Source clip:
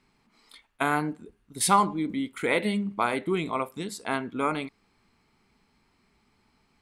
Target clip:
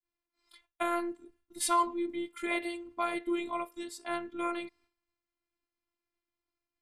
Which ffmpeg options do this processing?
-af "afftfilt=real='hypot(re,im)*cos(PI*b)':imag='0':win_size=512:overlap=0.75,agate=range=-33dB:threshold=-58dB:ratio=3:detection=peak,volume=-3dB"

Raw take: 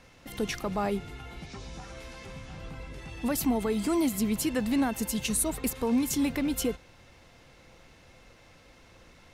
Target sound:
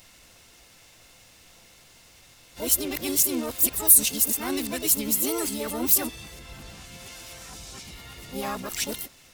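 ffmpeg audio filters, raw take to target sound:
-filter_complex "[0:a]areverse,crystalizer=i=5.5:c=0,asplit=3[a][b][c];[b]asetrate=58866,aresample=44100,atempo=0.749154,volume=-2dB[d];[c]asetrate=88200,aresample=44100,atempo=0.5,volume=-11dB[e];[a][d][e]amix=inputs=3:normalize=0,volume=-6dB"

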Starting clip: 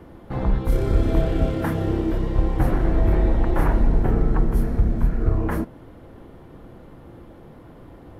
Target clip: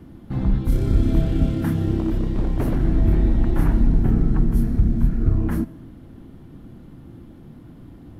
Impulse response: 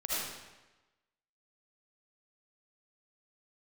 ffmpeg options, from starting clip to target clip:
-filter_complex "[0:a]equalizer=f=125:t=o:w=1:g=3,equalizer=f=250:t=o:w=1:g=6,equalizer=f=500:t=o:w=1:g=-10,equalizer=f=1k:t=o:w=1:g=-6,equalizer=f=2k:t=o:w=1:g=-4,asplit=2[a][b];[1:a]atrim=start_sample=2205[c];[b][c]afir=irnorm=-1:irlink=0,volume=-25.5dB[d];[a][d]amix=inputs=2:normalize=0,asettb=1/sr,asplit=3[e][f][g];[e]atrim=end=1.994[h];[f]atrim=start=1.99:end=2.76,asetpts=PTS-STARTPTS,afade=t=in:d=0.004:c=qsin,afade=t=out:st=0.766:d=0.004:c=qsin,aeval=exprs='0.188*(abs(mod(val(0)/0.188+3,4)-2)-1)':c=same[i];[g]atrim=start=2.756[j];[h][i]acrossfade=d=0.004:c1=hsin:c2=qsin[k];[k][j]acrossfade=d=0.004:c1=qsin:c2=hsin"

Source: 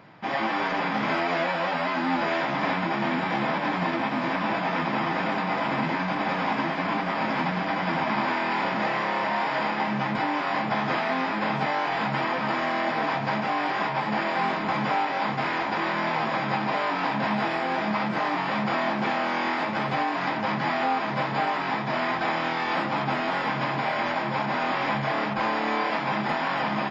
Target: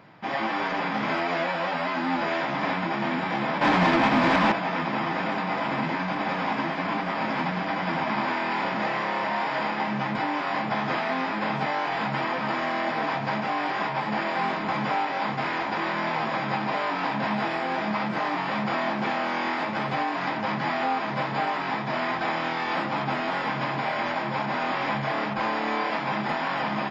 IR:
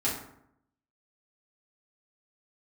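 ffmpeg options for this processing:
-filter_complex "[0:a]asettb=1/sr,asplit=3[a][b][c];[a]atrim=end=3.614[d];[b]atrim=start=3.61:end=4.52,asetpts=PTS-STARTPTS,afade=t=in:d=0.004:c=qsin,afade=t=out:st=0.906:d=0.004:c=qsin,aeval=exprs='0.2*sin(PI/2*1.78*val(0)/0.2)':c=same[e];[c]atrim=start=4.516[f];[d][e]acrossfade=d=0.004:c1=hsin:c2=qsin[g];[g][f]acrossfade=d=0.004:c1=qsin:c2=hsin,volume=-1dB"

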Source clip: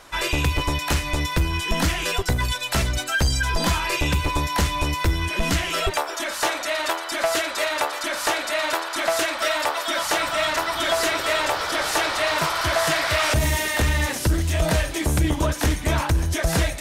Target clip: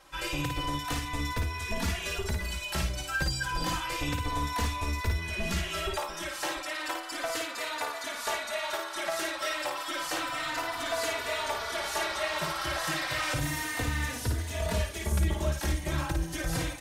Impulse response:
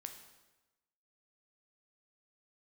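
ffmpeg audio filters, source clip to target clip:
-filter_complex "[0:a]aecho=1:1:55|700:0.596|0.178,asplit=2[a][b];[b]adelay=3.3,afreqshift=-0.31[c];[a][c]amix=inputs=2:normalize=1,volume=-7.5dB"

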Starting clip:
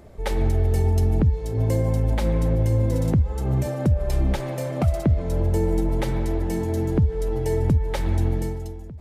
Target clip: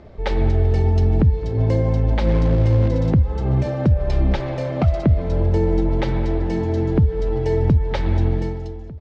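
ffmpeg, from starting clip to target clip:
-filter_complex "[0:a]asettb=1/sr,asplit=3[a][b][c];[a]atrim=end=2.274[d];[b]atrim=start=2.27:end=2.88,asetpts=PTS-STARTPTS,afade=t=in:d=0.004:c=qsin,afade=t=out:st=0.606:d=0.004:c=qsin,aeval=exprs='val(0)+0.5*0.0299*sgn(val(0))':c=same[e];[c]atrim=start=2.876[f];[d][e]acrossfade=d=0.004:c1=hsin:c2=qsin[g];[g][f]acrossfade=d=0.004:c1=qsin:c2=hsin,lowpass=f=4.9k:w=0.5412,lowpass=f=4.9k:w=1.3066,asplit=2[h][i];[i]aecho=0:1:216|432|648:0.0891|0.0357|0.0143[j];[h][j]amix=inputs=2:normalize=0,volume=3.5dB"

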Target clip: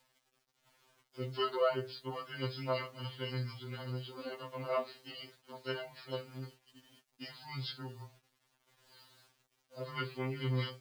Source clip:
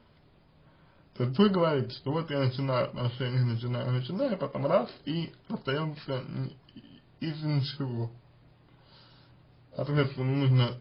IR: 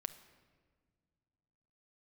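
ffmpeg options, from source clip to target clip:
-af "highpass=f=680:p=1,acrusher=bits=9:mix=0:aa=0.000001,afftfilt=real='re*2.45*eq(mod(b,6),0)':imag='im*2.45*eq(mod(b,6),0)':win_size=2048:overlap=0.75,volume=-2dB"

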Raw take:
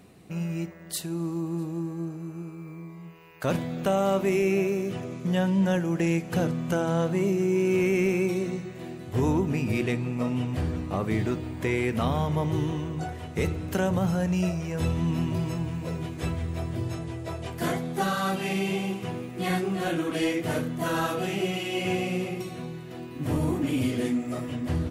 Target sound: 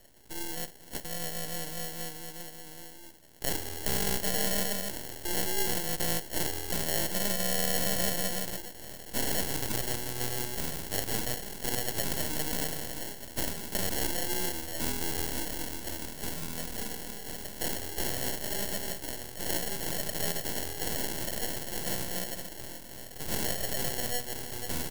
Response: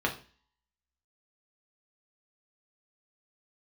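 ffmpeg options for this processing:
-af "acrusher=samples=36:mix=1:aa=0.000001,aeval=exprs='abs(val(0))':c=same,crystalizer=i=5:c=0,volume=-6.5dB"

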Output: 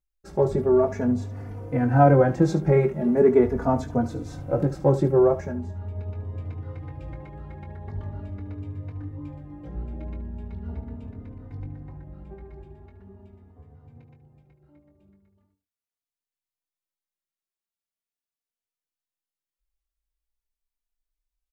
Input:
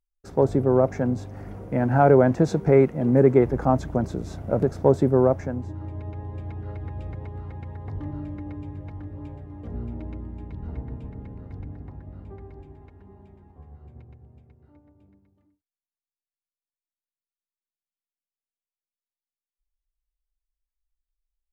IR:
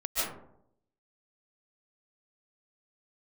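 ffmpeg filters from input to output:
-filter_complex "[0:a]asplit=2[a][b];[b]aecho=0:1:21|73:0.398|0.2[c];[a][c]amix=inputs=2:normalize=0,asplit=2[d][e];[e]adelay=3.3,afreqshift=0.41[f];[d][f]amix=inputs=2:normalize=1,volume=1.5dB"

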